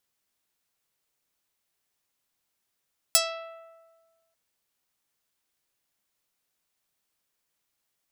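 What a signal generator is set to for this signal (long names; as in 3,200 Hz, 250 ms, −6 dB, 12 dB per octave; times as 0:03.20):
Karplus-Strong string E5, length 1.19 s, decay 1.50 s, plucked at 0.32, medium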